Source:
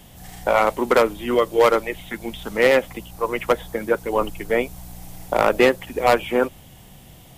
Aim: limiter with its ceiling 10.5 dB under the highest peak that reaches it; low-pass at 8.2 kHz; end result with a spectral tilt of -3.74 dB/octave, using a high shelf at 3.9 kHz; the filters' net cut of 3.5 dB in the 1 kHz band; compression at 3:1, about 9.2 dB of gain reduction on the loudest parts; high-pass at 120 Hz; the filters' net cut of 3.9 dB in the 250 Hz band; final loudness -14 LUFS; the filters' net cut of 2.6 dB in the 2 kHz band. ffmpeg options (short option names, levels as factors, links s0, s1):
-af "highpass=120,lowpass=8200,equalizer=f=250:t=o:g=-5,equalizer=f=1000:t=o:g=-4,equalizer=f=2000:t=o:g=-3.5,highshelf=f=3900:g=6.5,acompressor=threshold=0.0501:ratio=3,volume=9.44,alimiter=limit=0.841:level=0:latency=1"